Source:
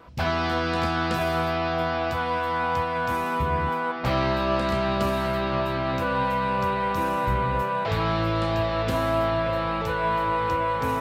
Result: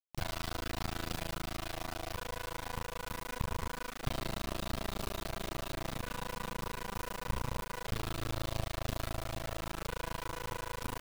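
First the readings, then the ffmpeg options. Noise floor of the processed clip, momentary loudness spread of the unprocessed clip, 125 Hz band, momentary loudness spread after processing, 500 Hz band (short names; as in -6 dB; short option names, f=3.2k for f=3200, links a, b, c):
-48 dBFS, 2 LU, -12.0 dB, 3 LU, -18.0 dB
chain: -filter_complex "[0:a]acrossover=split=150|3000[a][b][c];[b]acompressor=threshold=-35dB:ratio=4[d];[a][d][c]amix=inputs=3:normalize=0,tremolo=f=27:d=0.974,acrusher=bits=4:dc=4:mix=0:aa=0.000001"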